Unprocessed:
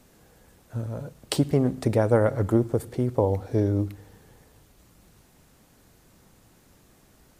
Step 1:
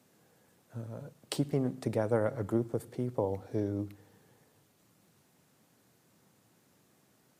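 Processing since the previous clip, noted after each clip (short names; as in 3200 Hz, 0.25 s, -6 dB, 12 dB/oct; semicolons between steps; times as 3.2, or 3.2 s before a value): HPF 110 Hz 24 dB/oct; gain -8.5 dB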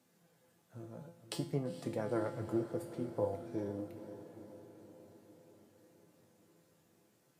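flange 0.52 Hz, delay 3.3 ms, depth 9.9 ms, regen +52%; resonator 170 Hz, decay 0.44 s, harmonics all, mix 80%; diffused feedback echo 0.457 s, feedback 62%, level -12 dB; gain +9 dB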